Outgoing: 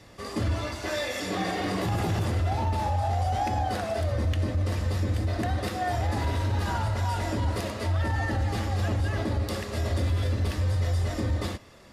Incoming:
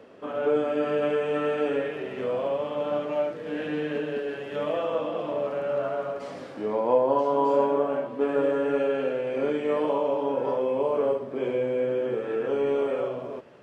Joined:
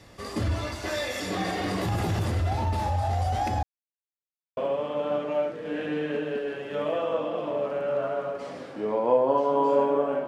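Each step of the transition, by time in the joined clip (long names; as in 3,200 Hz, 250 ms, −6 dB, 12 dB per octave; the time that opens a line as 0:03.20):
outgoing
0:03.63–0:04.57: silence
0:04.57: continue with incoming from 0:02.38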